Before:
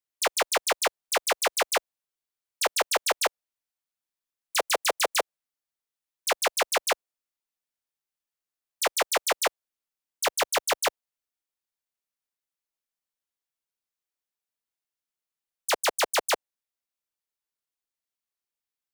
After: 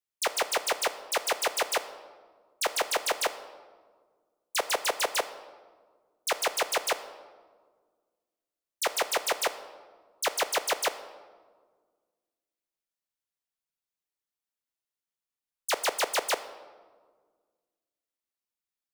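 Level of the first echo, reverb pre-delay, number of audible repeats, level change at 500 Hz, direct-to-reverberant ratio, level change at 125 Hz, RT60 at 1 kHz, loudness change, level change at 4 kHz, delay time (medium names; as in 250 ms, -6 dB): no echo, 21 ms, no echo, -2.5 dB, 11.0 dB, no reading, 1.5 s, -3.0 dB, -2.5 dB, no echo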